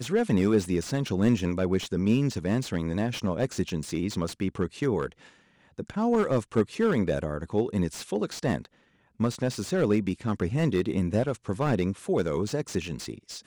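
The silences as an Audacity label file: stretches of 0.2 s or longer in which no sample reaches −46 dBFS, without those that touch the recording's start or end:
5.290000	5.780000	silence
8.660000	9.200000	silence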